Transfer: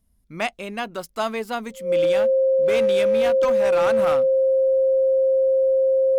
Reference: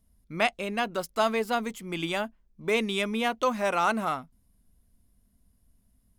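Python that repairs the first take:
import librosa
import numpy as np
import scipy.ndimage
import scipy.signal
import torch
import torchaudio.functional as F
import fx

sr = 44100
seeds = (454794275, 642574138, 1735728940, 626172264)

y = fx.fix_declip(x, sr, threshold_db=-14.5)
y = fx.notch(y, sr, hz=530.0, q=30.0)
y = fx.gain(y, sr, db=fx.steps((0.0, 0.0), (3.99, -3.5)))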